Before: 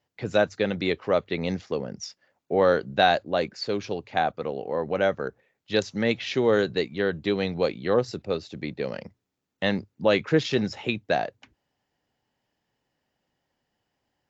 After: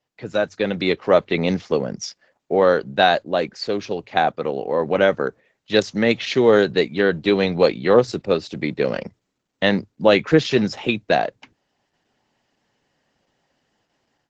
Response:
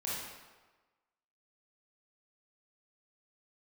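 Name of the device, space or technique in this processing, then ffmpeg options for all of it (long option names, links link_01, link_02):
video call: -af "highpass=120,dynaudnorm=framelen=430:gausssize=3:maxgain=11dB" -ar 48000 -c:a libopus -b:a 12k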